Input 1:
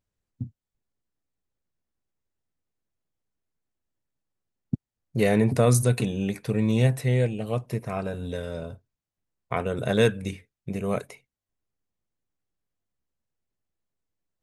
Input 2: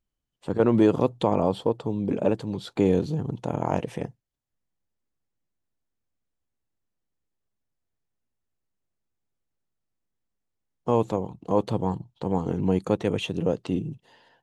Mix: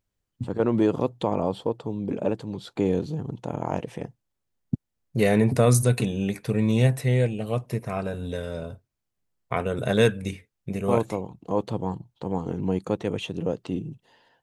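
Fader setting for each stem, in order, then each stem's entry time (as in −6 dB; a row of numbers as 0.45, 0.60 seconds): +1.0, −2.5 decibels; 0.00, 0.00 seconds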